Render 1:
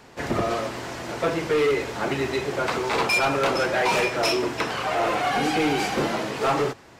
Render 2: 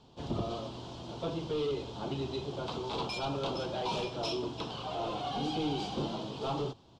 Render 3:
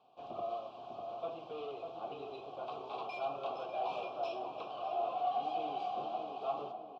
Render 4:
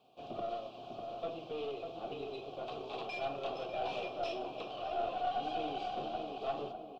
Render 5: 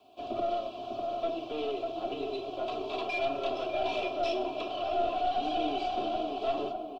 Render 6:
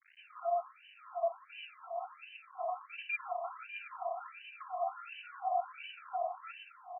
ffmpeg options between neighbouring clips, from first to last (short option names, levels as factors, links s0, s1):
-af "firequalizer=gain_entry='entry(150,0);entry(230,-3);entry(500,-8);entry(940,-6);entry(1900,-26);entry(3200,0);entry(5500,-9);entry(13000,-29)':delay=0.05:min_phase=1,volume=0.562"
-filter_complex "[0:a]asplit=3[s0][s1][s2];[s0]bandpass=f=730:t=q:w=8,volume=1[s3];[s1]bandpass=f=1090:t=q:w=8,volume=0.501[s4];[s2]bandpass=f=2440:t=q:w=8,volume=0.355[s5];[s3][s4][s5]amix=inputs=3:normalize=0,asplit=2[s6][s7];[s7]adelay=599,lowpass=f=1300:p=1,volume=0.562,asplit=2[s8][s9];[s9]adelay=599,lowpass=f=1300:p=1,volume=0.47,asplit=2[s10][s11];[s11]adelay=599,lowpass=f=1300:p=1,volume=0.47,asplit=2[s12][s13];[s13]adelay=599,lowpass=f=1300:p=1,volume=0.47,asplit=2[s14][s15];[s15]adelay=599,lowpass=f=1300:p=1,volume=0.47,asplit=2[s16][s17];[s17]adelay=599,lowpass=f=1300:p=1,volume=0.47[s18];[s6][s8][s10][s12][s14][s16][s18]amix=inputs=7:normalize=0,volume=1.78"
-af "equalizer=f=990:w=1.2:g=-11.5,aeval=exprs='0.0631*(cos(1*acos(clip(val(0)/0.0631,-1,1)))-cos(1*PI/2))+0.00224*(cos(8*acos(clip(val(0)/0.0631,-1,1)))-cos(8*PI/2))':c=same,volume=2"
-filter_complex "[0:a]aecho=1:1:3:0.81,acrossover=split=120|630|1800[s0][s1][s2][s3];[s2]alimiter=level_in=3.98:limit=0.0631:level=0:latency=1,volume=0.251[s4];[s0][s1][s4][s3]amix=inputs=4:normalize=0,volume=1.78"
-af "acrusher=bits=8:mix=0:aa=0.000001,afftfilt=real='re*between(b*sr/1024,890*pow(2200/890,0.5+0.5*sin(2*PI*1.4*pts/sr))/1.41,890*pow(2200/890,0.5+0.5*sin(2*PI*1.4*pts/sr))*1.41)':imag='im*between(b*sr/1024,890*pow(2200/890,0.5+0.5*sin(2*PI*1.4*pts/sr))/1.41,890*pow(2200/890,0.5+0.5*sin(2*PI*1.4*pts/sr))*1.41)':win_size=1024:overlap=0.75,volume=1.12"